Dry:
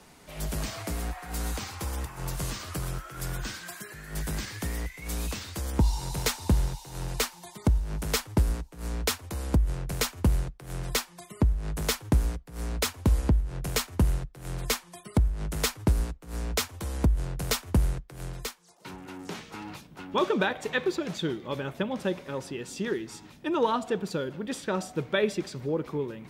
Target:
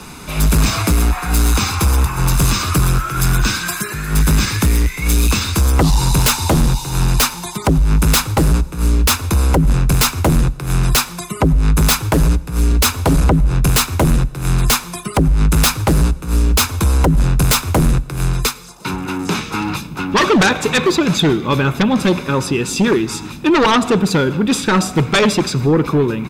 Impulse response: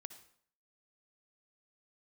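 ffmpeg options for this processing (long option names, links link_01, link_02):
-filter_complex "[0:a]aecho=1:1:0.8:0.52,aeval=exprs='0.282*sin(PI/2*3.98*val(0)/0.282)':channel_layout=same,asplit=2[link_01][link_02];[1:a]atrim=start_sample=2205,asetrate=30870,aresample=44100[link_03];[link_02][link_03]afir=irnorm=-1:irlink=0,volume=-5.5dB[link_04];[link_01][link_04]amix=inputs=2:normalize=0"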